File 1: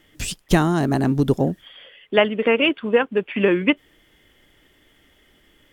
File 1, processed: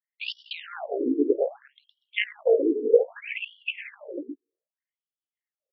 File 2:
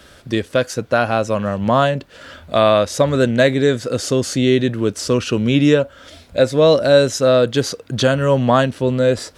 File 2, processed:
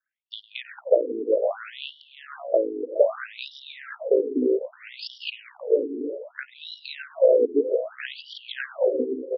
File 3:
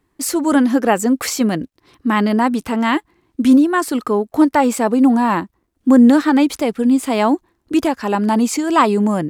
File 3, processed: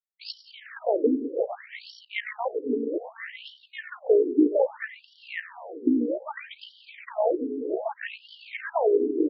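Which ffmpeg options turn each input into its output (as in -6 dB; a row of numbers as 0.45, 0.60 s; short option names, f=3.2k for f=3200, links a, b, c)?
-filter_complex "[0:a]equalizer=f=125:t=o:w=1:g=7,equalizer=f=250:t=o:w=1:g=9,equalizer=f=500:t=o:w=1:g=11,equalizer=f=1k:t=o:w=1:g=-10,equalizer=f=2k:t=o:w=1:g=9,equalizer=f=8k:t=o:w=1:g=7,anlmdn=1000,tremolo=f=58:d=0.667,acompressor=threshold=-12dB:ratio=5,acrossover=split=310 4700:gain=0.112 1 0.141[a][b][c];[a][b][c]amix=inputs=3:normalize=0,aecho=1:1:103|178|312|355|498|612:0.112|0.106|0.133|0.178|0.299|0.2,afftfilt=real='re*between(b*sr/1024,320*pow(4100/320,0.5+0.5*sin(2*PI*0.63*pts/sr))/1.41,320*pow(4100/320,0.5+0.5*sin(2*PI*0.63*pts/sr))*1.41)':imag='im*between(b*sr/1024,320*pow(4100/320,0.5+0.5*sin(2*PI*0.63*pts/sr))/1.41,320*pow(4100/320,0.5+0.5*sin(2*PI*0.63*pts/sr))*1.41)':win_size=1024:overlap=0.75"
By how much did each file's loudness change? 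-6.5, -8.5, -11.5 LU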